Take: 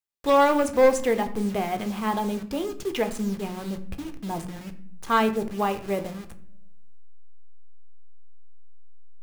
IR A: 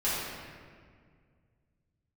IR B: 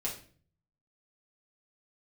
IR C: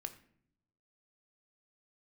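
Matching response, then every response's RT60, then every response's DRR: C; 1.9, 0.45, 0.65 seconds; −11.0, −5.0, 7.5 decibels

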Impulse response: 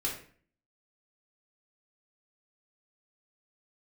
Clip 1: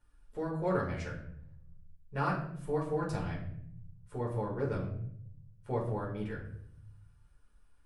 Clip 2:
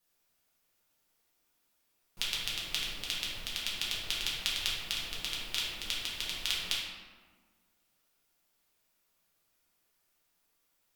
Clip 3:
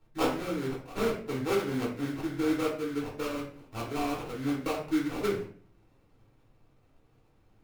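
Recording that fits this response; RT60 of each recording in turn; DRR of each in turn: 3; 0.65, 1.5, 0.45 seconds; −4.5, −7.0, −3.5 decibels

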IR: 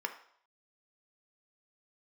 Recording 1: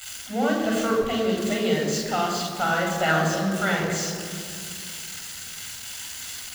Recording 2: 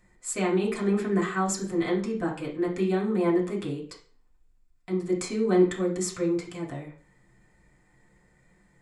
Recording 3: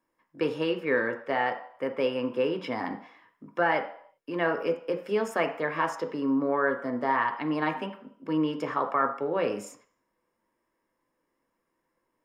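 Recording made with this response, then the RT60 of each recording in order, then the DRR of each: 3; 2.2, 0.40, 0.65 seconds; −0.5, −4.0, 5.0 decibels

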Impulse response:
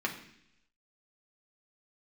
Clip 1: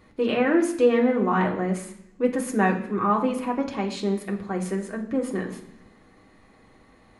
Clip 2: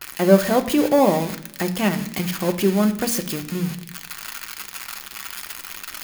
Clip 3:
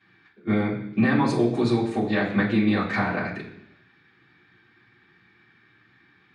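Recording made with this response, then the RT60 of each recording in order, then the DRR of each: 1; 0.75, 0.75, 0.75 seconds; −1.0, 5.0, −9.5 decibels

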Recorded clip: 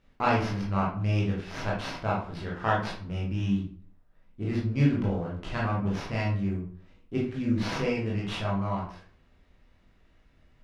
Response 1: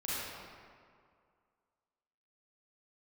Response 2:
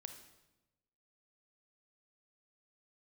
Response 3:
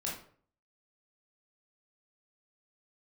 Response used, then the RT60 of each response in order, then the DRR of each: 3; 2.1, 1.0, 0.50 seconds; −10.0, 6.5, −4.5 decibels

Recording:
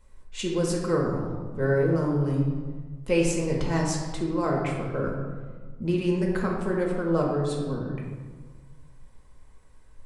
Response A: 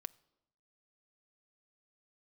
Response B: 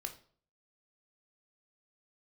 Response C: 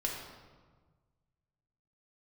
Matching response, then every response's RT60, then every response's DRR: C; 0.90, 0.50, 1.5 seconds; 16.0, 5.0, −2.0 decibels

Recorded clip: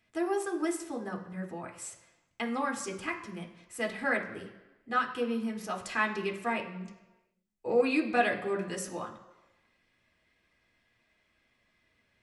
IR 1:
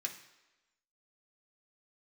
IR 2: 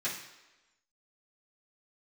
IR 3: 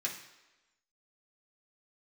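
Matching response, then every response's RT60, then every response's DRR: 1; 1.1, 1.1, 1.1 seconds; 1.5, −11.5, −3.5 decibels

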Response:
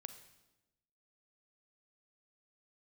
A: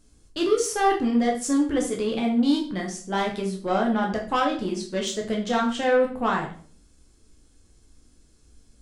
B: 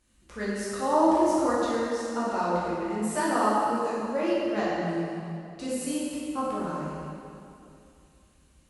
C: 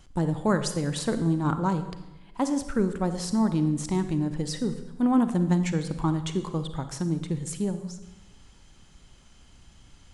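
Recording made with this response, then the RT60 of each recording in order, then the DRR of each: C; 0.45, 2.7, 1.0 seconds; −0.5, −9.0, 9.0 decibels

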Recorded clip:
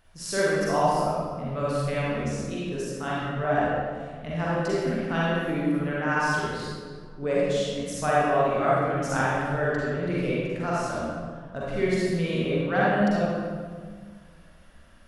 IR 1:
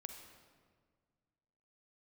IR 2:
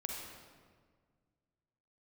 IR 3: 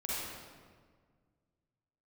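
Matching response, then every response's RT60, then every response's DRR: 3; 1.7, 1.7, 1.7 seconds; 5.0, −0.5, −8.0 decibels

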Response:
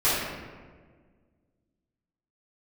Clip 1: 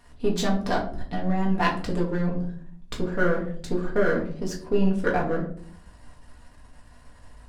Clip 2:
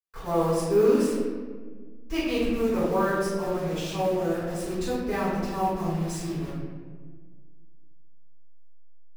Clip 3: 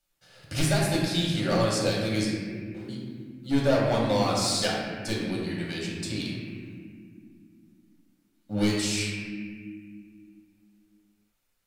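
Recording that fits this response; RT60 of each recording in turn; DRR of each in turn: 2; 0.55 s, 1.6 s, non-exponential decay; −3.0, −13.5, −5.0 decibels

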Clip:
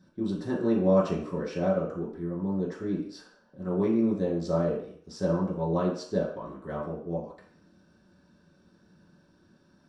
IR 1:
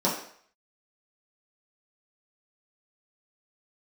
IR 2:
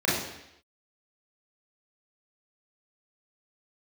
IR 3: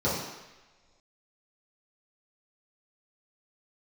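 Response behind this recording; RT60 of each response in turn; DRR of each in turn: 1; 0.60 s, 0.80 s, non-exponential decay; −7.5, −7.5, −10.5 decibels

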